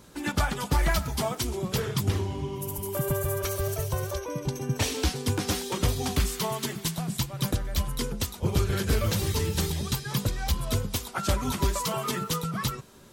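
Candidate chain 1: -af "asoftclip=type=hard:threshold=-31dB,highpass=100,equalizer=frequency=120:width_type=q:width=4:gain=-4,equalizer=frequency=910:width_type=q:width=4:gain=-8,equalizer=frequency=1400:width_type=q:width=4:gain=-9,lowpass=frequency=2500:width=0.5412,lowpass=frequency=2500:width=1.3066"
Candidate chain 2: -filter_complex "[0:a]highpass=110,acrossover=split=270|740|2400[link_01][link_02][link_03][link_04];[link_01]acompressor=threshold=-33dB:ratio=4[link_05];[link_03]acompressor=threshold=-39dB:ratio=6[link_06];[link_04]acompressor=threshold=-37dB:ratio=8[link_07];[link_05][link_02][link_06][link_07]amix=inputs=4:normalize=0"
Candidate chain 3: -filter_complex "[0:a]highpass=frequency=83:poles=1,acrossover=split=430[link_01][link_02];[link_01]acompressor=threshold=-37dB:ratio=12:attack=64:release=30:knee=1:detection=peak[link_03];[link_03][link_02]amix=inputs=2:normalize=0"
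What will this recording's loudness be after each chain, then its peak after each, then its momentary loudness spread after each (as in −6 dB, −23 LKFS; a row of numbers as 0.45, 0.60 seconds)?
−38.0, −33.0, −30.5 LKFS; −26.5, −15.5, −14.0 dBFS; 3, 4, 4 LU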